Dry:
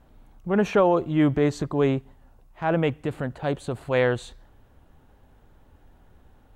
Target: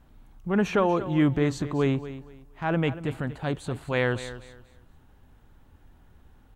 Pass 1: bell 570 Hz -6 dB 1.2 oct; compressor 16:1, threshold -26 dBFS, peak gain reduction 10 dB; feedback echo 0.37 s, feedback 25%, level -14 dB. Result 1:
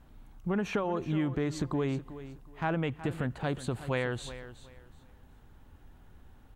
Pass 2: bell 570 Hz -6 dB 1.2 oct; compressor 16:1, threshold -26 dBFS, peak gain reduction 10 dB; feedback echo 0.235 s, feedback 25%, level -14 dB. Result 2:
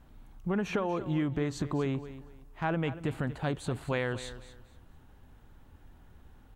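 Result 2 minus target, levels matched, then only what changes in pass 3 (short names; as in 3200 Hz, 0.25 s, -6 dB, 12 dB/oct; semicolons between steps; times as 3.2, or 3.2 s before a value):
compressor: peak gain reduction +10 dB
remove: compressor 16:1, threshold -26 dBFS, peak gain reduction 10 dB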